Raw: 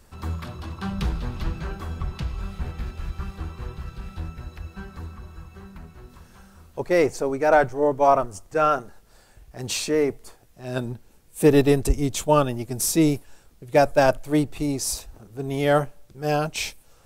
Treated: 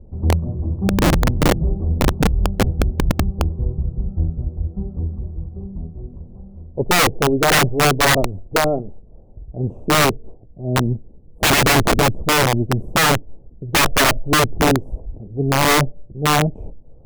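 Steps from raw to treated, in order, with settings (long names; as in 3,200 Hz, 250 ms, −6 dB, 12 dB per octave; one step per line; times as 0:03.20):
inverse Chebyshev low-pass filter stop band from 1,700 Hz, stop band 50 dB
low-shelf EQ 380 Hz +9.5 dB
wrap-around overflow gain 13 dB
level +4 dB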